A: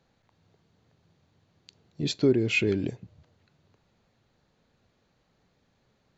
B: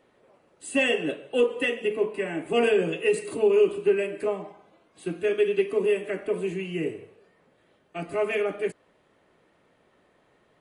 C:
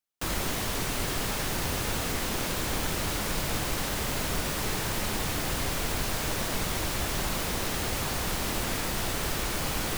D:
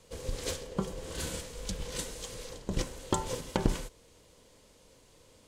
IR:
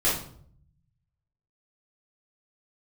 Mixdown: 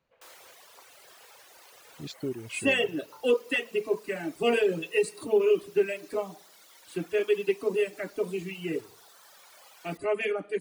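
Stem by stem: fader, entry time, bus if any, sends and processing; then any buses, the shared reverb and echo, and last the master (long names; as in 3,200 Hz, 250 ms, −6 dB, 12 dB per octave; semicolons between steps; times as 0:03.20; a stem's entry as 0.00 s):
−11.0 dB, 0.00 s, no send, no processing
−1.5 dB, 1.90 s, no send, parametric band 4,600 Hz +5 dB 0.77 octaves
−17.5 dB, 0.00 s, no send, high-pass filter 460 Hz 24 dB per octave
−15.0 dB, 0.00 s, no send, Chebyshev band-pass filter 580–2,600 Hz, order 3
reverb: not used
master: reverb reduction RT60 2 s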